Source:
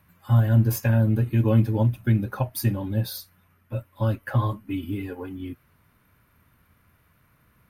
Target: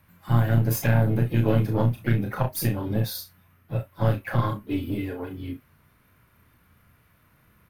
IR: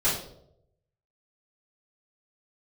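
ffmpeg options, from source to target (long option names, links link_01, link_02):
-filter_complex "[0:a]acrossover=split=420[link_01][link_02];[link_01]alimiter=limit=-18dB:level=0:latency=1:release=223[link_03];[link_03][link_02]amix=inputs=2:normalize=0,aeval=exprs='0.211*(cos(1*acos(clip(val(0)/0.211,-1,1)))-cos(1*PI/2))+0.0668*(cos(2*acos(clip(val(0)/0.211,-1,1)))-cos(2*PI/2))+0.00335*(cos(8*acos(clip(val(0)/0.211,-1,1)))-cos(8*PI/2))':channel_layout=same,aecho=1:1:34|63:0.562|0.168,asplit=4[link_04][link_05][link_06][link_07];[link_05]asetrate=55563,aresample=44100,atempo=0.793701,volume=-15dB[link_08];[link_06]asetrate=58866,aresample=44100,atempo=0.749154,volume=-16dB[link_09];[link_07]asetrate=66075,aresample=44100,atempo=0.66742,volume=-17dB[link_10];[link_04][link_08][link_09][link_10]amix=inputs=4:normalize=0"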